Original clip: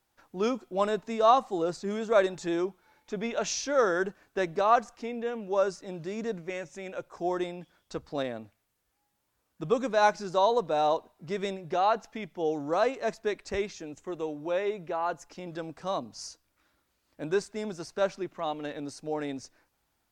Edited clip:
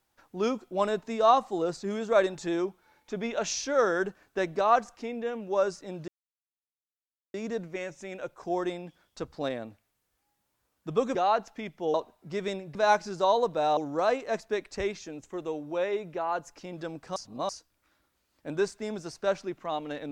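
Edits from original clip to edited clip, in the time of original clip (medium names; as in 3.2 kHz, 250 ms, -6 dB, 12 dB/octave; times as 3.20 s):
6.08 s: insert silence 1.26 s
9.89–10.91 s: swap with 11.72–12.51 s
15.90–16.23 s: reverse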